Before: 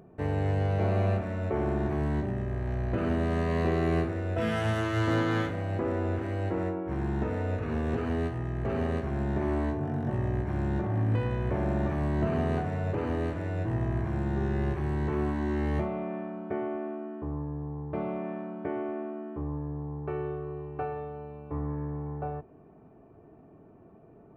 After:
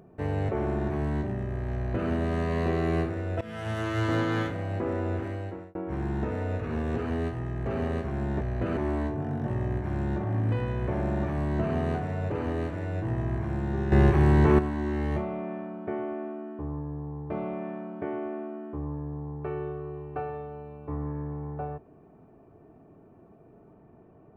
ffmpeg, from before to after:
-filter_complex "[0:a]asplit=8[a][b][c][d][e][f][g][h];[a]atrim=end=0.492[i];[b]atrim=start=1.478:end=4.4,asetpts=PTS-STARTPTS,afade=t=out:st=2.918:d=0.004:c=hsin:silence=0.133352[j];[c]atrim=start=4.4:end=6.74,asetpts=PTS-STARTPTS,afade=t=in:d=0.5:silence=0.133352,afade=t=out:st=1.82:d=0.52[k];[d]atrim=start=6.74:end=9.402,asetpts=PTS-STARTPTS,afade=t=in:d=0.004:c=hsin[l];[e]atrim=start=2.728:end=3.092[m];[f]atrim=start=9.398:end=14.552[n];[g]atrim=start=14.548:end=15.222,asetpts=PTS-STARTPTS,volume=10dB[o];[h]atrim=start=15.218[p];[j][k][l]concat=n=3:v=0:a=1[q];[i][q]acrossfade=d=0.004:c1=hsin:c2=hsin[r];[r][m]acrossfade=d=0.004:c1=hsin:c2=hsin[s];[s][n]acrossfade=d=0.004:c1=hsin:c2=hsin[t];[t][o]acrossfade=d=0.004:c1=hsin:c2=hsin[u];[u][p]acrossfade=d=0.004:c1=hsin:c2=hsin"

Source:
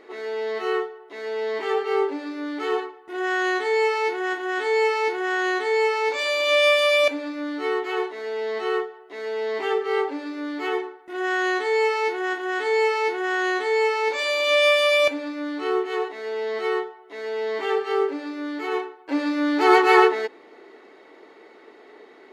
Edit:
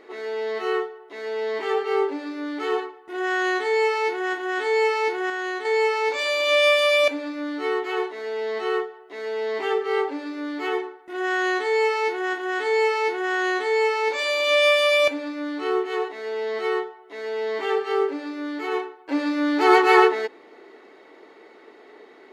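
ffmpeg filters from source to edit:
-filter_complex "[0:a]asplit=3[a][b][c];[a]atrim=end=5.302[d];[b]atrim=start=5.298:end=5.652,asetpts=PTS-STARTPTS,volume=-5dB[e];[c]atrim=start=5.648[f];[d][e]acrossfade=d=0.004:c1=hsin:c2=hsin[g];[g][f]acrossfade=d=0.004:c1=hsin:c2=hsin"

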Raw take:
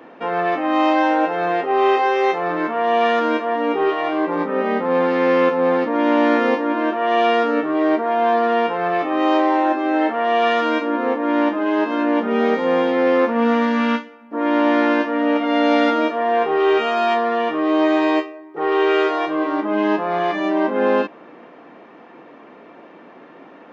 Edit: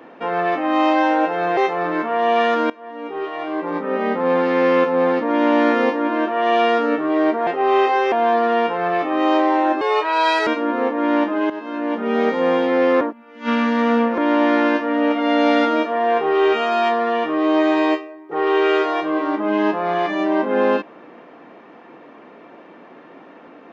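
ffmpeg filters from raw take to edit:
-filter_complex "[0:a]asplit=10[a][b][c][d][e][f][g][h][i][j];[a]atrim=end=1.572[k];[b]atrim=start=2.218:end=3.35,asetpts=PTS-STARTPTS,afade=t=out:st=1.128:d=0.004:c=hsin:silence=0.0841395[l];[c]atrim=start=3.35:end=8.122,asetpts=PTS-STARTPTS,afade=t=in:d=1.47:silence=0.0841395[m];[d]atrim=start=1.568:end=2.222[n];[e]atrim=start=8.118:end=9.814[o];[f]atrim=start=9.81:end=10.72,asetpts=PTS-STARTPTS,asetrate=60858,aresample=44100,atrim=end_sample=29080,asetpts=PTS-STARTPTS[p];[g]atrim=start=10.716:end=11.75,asetpts=PTS-STARTPTS,afade=t=out:st=1.03:d=0.004:c=hsin:silence=0.223872[q];[h]atrim=start=11.75:end=13.262,asetpts=PTS-STARTPTS,afade=t=in:d=0.79:silence=0.223872[r];[i]atrim=start=13.258:end=14.432,asetpts=PTS-STARTPTS,areverse[s];[j]atrim=start=14.428[t];[l][m]concat=n=2:v=0:a=1[u];[k][u]acrossfade=d=0.004:c1=hsin:c2=hsin[v];[v][n]acrossfade=d=0.004:c1=hsin:c2=hsin[w];[w][o]acrossfade=d=0.004:c1=hsin:c2=hsin[x];[x][p]acrossfade=d=0.004:c1=hsin:c2=hsin[y];[q][r]concat=n=2:v=0:a=1[z];[y][z]acrossfade=d=0.004:c1=hsin:c2=hsin[aa];[aa][s]acrossfade=d=0.004:c1=hsin:c2=hsin[ab];[ab][t]acrossfade=d=0.004:c1=hsin:c2=hsin"

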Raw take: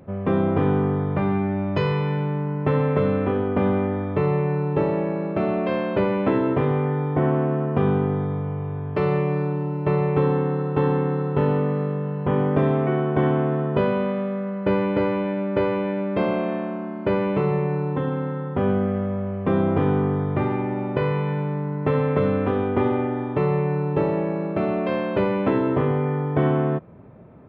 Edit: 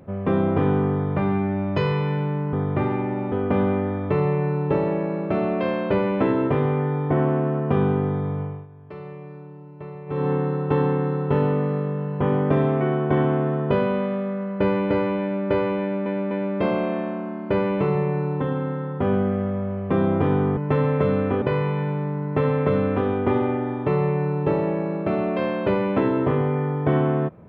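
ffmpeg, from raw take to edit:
-filter_complex "[0:a]asplit=9[a][b][c][d][e][f][g][h][i];[a]atrim=end=2.532[j];[b]atrim=start=20.128:end=20.922[k];[c]atrim=start=3.378:end=8.73,asetpts=PTS-STARTPTS,afade=t=out:st=5.092:d=0.26:silence=0.158489[l];[d]atrim=start=8.73:end=10.12,asetpts=PTS-STARTPTS,volume=-16dB[m];[e]atrim=start=10.12:end=16.122,asetpts=PTS-STARTPTS,afade=t=in:d=0.26:silence=0.158489[n];[f]atrim=start=15.868:end=16.122[o];[g]atrim=start=15.868:end=20.132[p];[h]atrim=start=2.528:end=3.382[q];[i]atrim=start=20.918[r];[j][k]acrossfade=d=0.004:c1=hsin:c2=hsin[s];[l][m][n]concat=n=3:v=0:a=1[t];[s][t]acrossfade=d=0.004:c1=hsin:c2=hsin[u];[u][o]acrossfade=d=0.004:c1=hsin:c2=hsin[v];[v][p]acrossfade=d=0.004:c1=hsin:c2=hsin[w];[w][q]acrossfade=d=0.004:c1=hsin:c2=hsin[x];[x][r]acrossfade=d=0.004:c1=hsin:c2=hsin"

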